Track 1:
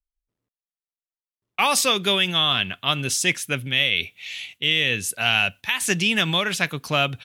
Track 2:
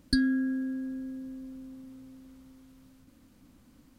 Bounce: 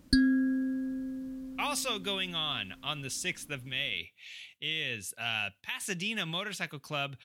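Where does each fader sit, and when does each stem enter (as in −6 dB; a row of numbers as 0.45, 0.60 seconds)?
−13.0, +1.0 decibels; 0.00, 0.00 seconds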